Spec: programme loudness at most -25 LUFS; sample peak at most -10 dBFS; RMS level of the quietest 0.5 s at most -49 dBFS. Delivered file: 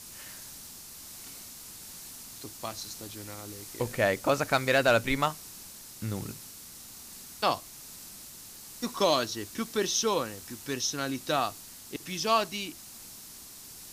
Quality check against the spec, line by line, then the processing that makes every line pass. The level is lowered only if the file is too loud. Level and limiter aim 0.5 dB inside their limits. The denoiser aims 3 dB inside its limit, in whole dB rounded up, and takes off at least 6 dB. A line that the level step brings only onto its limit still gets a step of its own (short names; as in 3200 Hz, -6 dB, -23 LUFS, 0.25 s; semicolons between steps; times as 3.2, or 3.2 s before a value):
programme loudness -29.5 LUFS: OK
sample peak -12.0 dBFS: OK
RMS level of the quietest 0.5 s -47 dBFS: fail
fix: denoiser 6 dB, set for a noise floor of -47 dBFS